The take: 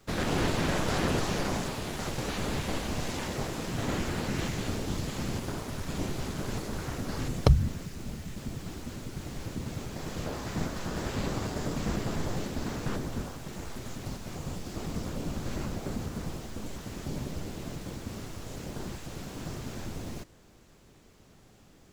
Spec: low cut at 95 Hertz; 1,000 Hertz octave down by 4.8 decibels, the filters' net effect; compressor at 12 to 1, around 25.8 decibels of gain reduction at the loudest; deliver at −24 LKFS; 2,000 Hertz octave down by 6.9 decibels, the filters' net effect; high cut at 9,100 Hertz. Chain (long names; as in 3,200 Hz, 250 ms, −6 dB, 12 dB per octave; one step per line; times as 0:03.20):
high-pass filter 95 Hz
low-pass filter 9,100 Hz
parametric band 1,000 Hz −4.5 dB
parametric band 2,000 Hz −7.5 dB
downward compressor 12 to 1, threshold −47 dBFS
level +27.5 dB